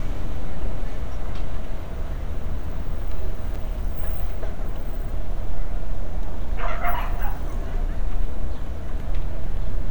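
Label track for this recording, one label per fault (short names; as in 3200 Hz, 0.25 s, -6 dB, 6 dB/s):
3.550000	3.560000	gap 5.9 ms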